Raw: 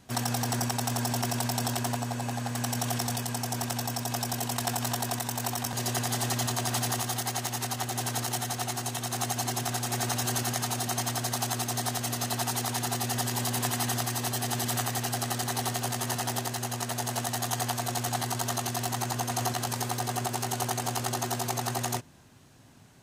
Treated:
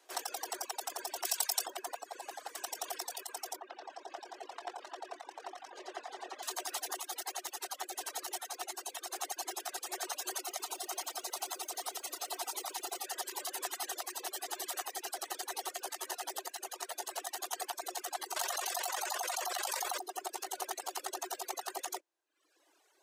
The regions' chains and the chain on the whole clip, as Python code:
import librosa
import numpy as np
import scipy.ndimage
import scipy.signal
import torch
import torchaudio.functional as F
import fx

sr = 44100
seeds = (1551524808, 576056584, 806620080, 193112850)

y = fx.chain(x, sr, fx.highpass(hz=470.0, slope=6),
    fx.high_shelf(hz=2600.0, db=10.0), at=(1.25, 1.66))
y = fx.chain(y, sr, fx.spacing_loss(db_at_10k=25),
    fx.echo_feedback(ms=113, feedback_pct=51, wet_db=-7.5), at=(3.56, 6.43))
y = fx.chain(y, sr, fx.notch(hz=1700.0, q=5.7),
    fx.echo_crushed(ms=117, feedback_pct=55, bits=9, wet_db=-10.0), at=(10.38, 13.05))
y = fx.chain(y, sr, fx.highpass(hz=530.0, slope=24),
    fx.env_flatten(amount_pct=100), at=(18.36, 19.98))
y = fx.dereverb_blind(y, sr, rt60_s=1.1)
y = scipy.signal.sosfilt(scipy.signal.butter(16, 310.0, 'highpass', fs=sr, output='sos'), y)
y = fx.dereverb_blind(y, sr, rt60_s=0.56)
y = F.gain(torch.from_numpy(y), -6.0).numpy()